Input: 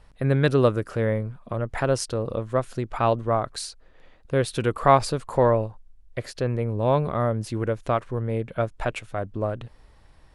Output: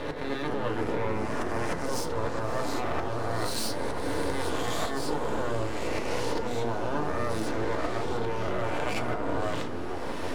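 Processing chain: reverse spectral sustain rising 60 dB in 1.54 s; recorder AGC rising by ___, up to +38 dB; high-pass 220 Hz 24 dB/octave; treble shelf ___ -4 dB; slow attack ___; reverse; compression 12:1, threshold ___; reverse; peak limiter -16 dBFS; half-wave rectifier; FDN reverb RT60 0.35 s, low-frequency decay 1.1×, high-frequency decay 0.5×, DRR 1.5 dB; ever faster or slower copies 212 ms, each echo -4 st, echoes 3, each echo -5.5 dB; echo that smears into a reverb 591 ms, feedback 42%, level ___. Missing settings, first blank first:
25 dB/s, 5.8 kHz, 150 ms, -26 dBFS, -14.5 dB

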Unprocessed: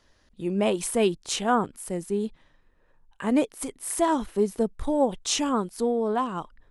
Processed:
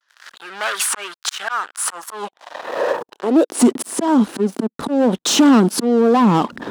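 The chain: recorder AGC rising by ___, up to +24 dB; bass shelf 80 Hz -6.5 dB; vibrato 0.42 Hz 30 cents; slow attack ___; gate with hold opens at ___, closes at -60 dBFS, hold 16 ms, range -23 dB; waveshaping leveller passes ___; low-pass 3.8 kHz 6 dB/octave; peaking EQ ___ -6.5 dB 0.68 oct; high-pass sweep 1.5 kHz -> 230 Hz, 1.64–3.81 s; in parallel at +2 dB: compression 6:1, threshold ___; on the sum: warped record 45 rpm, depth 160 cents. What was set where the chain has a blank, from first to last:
38 dB/s, 679 ms, -58 dBFS, 5, 2.1 kHz, -24 dBFS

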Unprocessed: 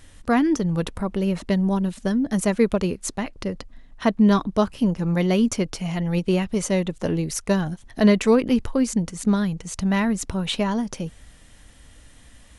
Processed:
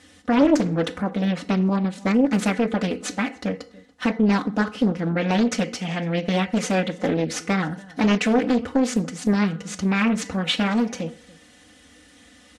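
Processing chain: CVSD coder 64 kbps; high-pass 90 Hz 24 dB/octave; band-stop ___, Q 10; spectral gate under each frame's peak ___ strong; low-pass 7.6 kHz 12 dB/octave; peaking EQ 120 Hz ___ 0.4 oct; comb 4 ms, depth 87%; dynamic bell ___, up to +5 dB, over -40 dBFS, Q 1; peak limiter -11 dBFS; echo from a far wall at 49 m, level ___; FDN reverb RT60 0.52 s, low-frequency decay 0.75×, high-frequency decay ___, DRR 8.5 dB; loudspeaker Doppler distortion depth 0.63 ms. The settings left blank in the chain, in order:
1 kHz, -45 dB, -7 dB, 1.7 kHz, -22 dB, 0.7×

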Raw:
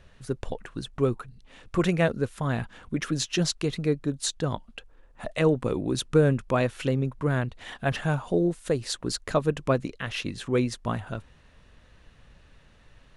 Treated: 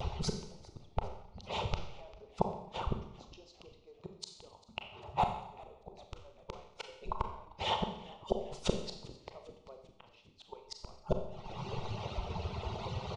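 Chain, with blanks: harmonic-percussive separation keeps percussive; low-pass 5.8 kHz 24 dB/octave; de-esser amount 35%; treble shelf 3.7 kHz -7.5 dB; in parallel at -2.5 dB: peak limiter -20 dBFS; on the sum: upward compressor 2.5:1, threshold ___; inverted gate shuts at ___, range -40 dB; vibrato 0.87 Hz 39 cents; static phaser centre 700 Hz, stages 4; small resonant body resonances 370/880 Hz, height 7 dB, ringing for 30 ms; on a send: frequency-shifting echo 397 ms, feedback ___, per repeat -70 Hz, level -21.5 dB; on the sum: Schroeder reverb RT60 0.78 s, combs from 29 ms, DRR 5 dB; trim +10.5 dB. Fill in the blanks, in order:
-36 dBFS, -25 dBFS, 54%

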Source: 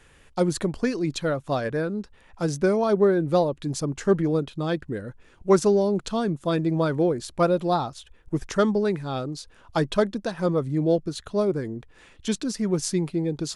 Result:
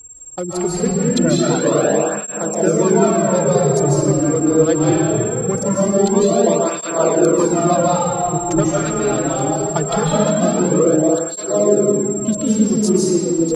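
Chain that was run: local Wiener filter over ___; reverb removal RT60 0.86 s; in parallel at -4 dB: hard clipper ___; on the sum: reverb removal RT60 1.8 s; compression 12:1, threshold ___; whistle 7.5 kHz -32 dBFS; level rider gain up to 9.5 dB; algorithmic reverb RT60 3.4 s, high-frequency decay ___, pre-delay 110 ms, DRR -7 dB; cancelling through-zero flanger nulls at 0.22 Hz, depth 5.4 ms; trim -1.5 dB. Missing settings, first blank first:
25 samples, -17 dBFS, -22 dBFS, 0.55×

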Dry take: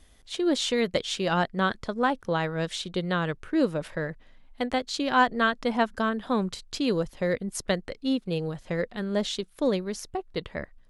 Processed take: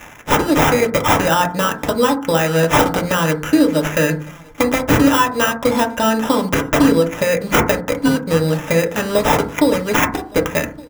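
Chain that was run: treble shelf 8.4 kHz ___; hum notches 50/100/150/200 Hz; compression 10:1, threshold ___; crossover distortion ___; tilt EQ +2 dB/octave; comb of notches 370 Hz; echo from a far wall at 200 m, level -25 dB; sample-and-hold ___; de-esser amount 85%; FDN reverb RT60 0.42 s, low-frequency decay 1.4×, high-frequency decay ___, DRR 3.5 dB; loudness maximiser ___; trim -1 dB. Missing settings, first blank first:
+10 dB, -32 dBFS, -57 dBFS, 10×, 0.25×, +22.5 dB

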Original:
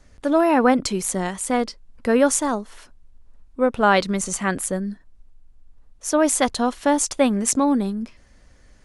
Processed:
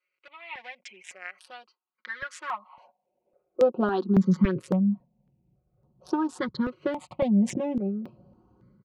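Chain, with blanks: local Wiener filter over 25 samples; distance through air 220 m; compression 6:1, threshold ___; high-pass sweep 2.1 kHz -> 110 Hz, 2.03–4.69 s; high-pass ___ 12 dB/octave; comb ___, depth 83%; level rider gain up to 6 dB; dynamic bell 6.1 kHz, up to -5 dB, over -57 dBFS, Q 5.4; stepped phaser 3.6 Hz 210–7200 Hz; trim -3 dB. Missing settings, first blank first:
-25 dBFS, 74 Hz, 5.5 ms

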